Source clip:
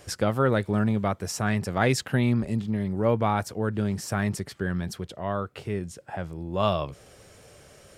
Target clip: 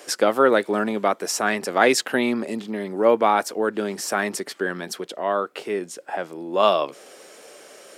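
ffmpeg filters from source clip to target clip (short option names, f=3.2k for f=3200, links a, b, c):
-af "highpass=f=280:w=0.5412,highpass=f=280:w=1.3066,volume=7.5dB"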